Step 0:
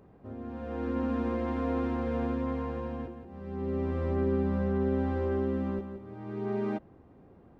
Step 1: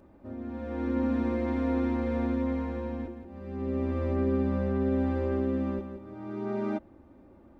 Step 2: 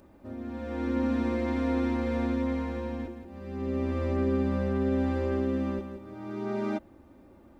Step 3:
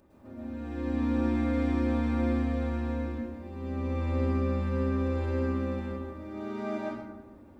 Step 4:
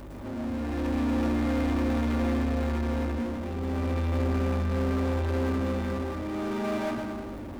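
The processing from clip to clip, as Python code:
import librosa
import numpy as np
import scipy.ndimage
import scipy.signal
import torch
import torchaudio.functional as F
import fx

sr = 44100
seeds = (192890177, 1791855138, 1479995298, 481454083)

y1 = x + 0.67 * np.pad(x, (int(3.4 * sr / 1000.0), 0))[:len(x)]
y2 = fx.high_shelf(y1, sr, hz=2700.0, db=10.0)
y3 = fx.rev_plate(y2, sr, seeds[0], rt60_s=1.1, hf_ratio=0.6, predelay_ms=95, drr_db=-6.0)
y3 = F.gain(torch.from_numpy(y3), -6.5).numpy()
y4 = fx.add_hum(y3, sr, base_hz=50, snr_db=31)
y4 = fx.power_curve(y4, sr, exponent=0.5)
y4 = F.gain(torch.from_numpy(y4), -3.0).numpy()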